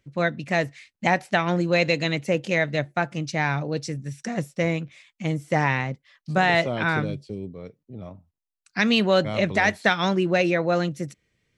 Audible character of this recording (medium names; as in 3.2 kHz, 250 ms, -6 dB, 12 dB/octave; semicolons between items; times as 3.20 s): noise floor -83 dBFS; spectral tilt -4.0 dB/octave